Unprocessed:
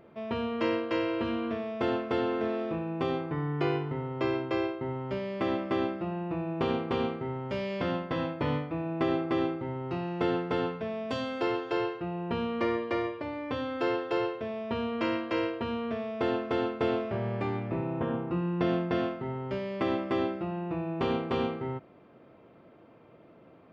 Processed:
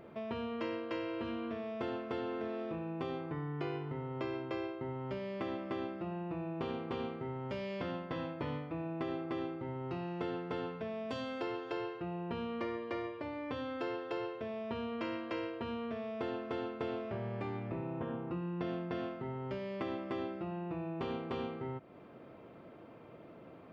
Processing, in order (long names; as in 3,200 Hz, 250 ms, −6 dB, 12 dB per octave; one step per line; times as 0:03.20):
downward compressor 2.5 to 1, threshold −43 dBFS, peak gain reduction 13 dB
level +2 dB